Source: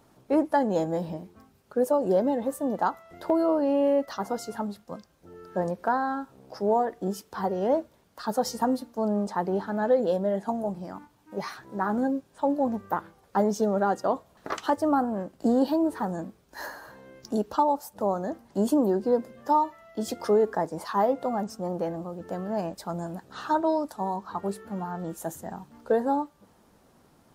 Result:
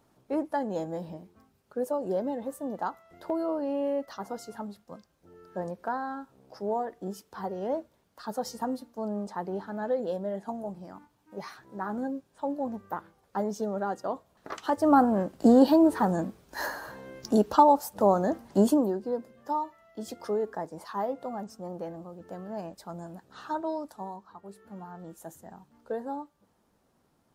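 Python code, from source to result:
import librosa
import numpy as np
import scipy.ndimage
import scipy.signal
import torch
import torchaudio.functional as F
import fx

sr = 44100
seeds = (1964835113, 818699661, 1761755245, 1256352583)

y = fx.gain(x, sr, db=fx.line((14.56, -6.5), (14.97, 4.5), (18.58, 4.5), (19.0, -7.5), (23.99, -7.5), (24.43, -17.0), (24.67, -10.0)))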